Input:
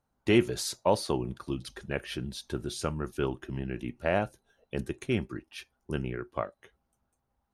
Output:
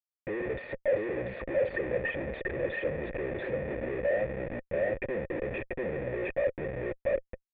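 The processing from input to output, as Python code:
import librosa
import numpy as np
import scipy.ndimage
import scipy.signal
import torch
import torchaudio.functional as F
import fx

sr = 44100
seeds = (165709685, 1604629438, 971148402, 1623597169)

p1 = fx.envelope_sharpen(x, sr, power=2.0)
p2 = p1 + fx.echo_single(p1, sr, ms=687, db=-3.5, dry=0)
p3 = fx.leveller(p2, sr, passes=2)
p4 = fx.schmitt(p3, sr, flips_db=-41.5)
p5 = fx.formant_cascade(p4, sr, vowel='e')
y = p5 * 10.0 ** (6.5 / 20.0)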